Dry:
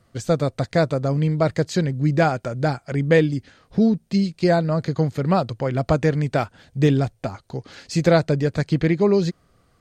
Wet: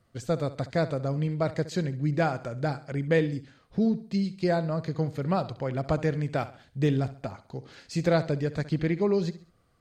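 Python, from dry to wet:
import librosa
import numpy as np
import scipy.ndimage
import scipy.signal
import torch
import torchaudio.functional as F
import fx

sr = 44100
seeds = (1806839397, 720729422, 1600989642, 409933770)

y = fx.peak_eq(x, sr, hz=6500.0, db=-2.0, octaves=0.77)
y = fx.echo_feedback(y, sr, ms=67, feedback_pct=39, wet_db=-15.5)
y = y * librosa.db_to_amplitude(-7.5)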